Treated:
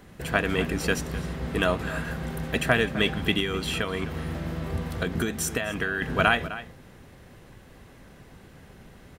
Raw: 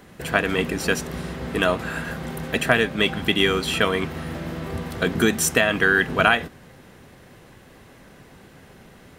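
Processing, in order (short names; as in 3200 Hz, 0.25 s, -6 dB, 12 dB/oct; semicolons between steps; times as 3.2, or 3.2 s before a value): 3.39–6.02 compressor 6:1, threshold -21 dBFS, peak gain reduction 8 dB; low shelf 100 Hz +9.5 dB; outdoor echo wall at 44 m, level -14 dB; gain -4 dB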